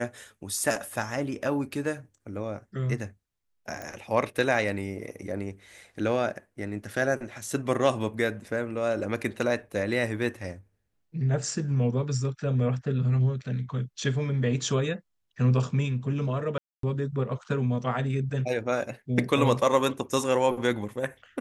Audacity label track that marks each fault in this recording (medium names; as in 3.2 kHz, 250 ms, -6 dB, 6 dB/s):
3.820000	3.820000	pop
16.580000	16.830000	dropout 253 ms